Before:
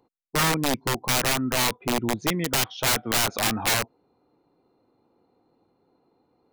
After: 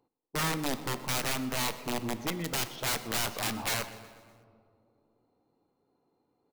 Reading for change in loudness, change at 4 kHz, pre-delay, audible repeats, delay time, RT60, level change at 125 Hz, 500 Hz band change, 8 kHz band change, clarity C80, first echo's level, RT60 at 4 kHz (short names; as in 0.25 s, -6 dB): -8.0 dB, -8.0 dB, 7 ms, 4, 0.123 s, 2.3 s, -7.5 dB, -8.0 dB, -8.5 dB, 12.5 dB, -20.0 dB, 1.2 s